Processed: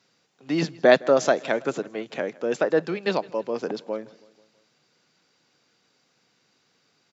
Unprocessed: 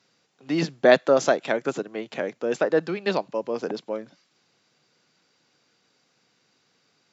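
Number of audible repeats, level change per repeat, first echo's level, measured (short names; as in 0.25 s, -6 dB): 3, -4.5 dB, -23.0 dB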